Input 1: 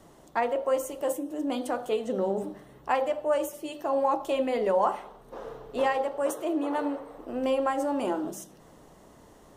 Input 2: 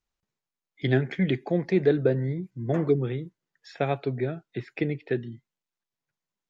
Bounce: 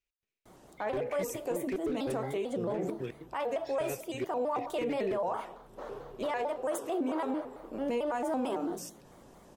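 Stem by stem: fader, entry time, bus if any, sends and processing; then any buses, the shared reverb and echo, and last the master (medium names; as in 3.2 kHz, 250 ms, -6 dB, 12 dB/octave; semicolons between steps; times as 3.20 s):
-2.0 dB, 0.45 s, no send, vibrato with a chosen wave square 4.5 Hz, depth 160 cents
-7.0 dB, 0.00 s, no send, fifteen-band graphic EQ 160 Hz -12 dB, 400 Hz +4 dB, 1 kHz -11 dB, 2.5 kHz +12 dB; trance gate "x.xxxx.x.xx" 145 bpm -24 dB; slew-rate limiter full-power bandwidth 39 Hz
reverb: none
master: peak limiter -24.5 dBFS, peak gain reduction 10 dB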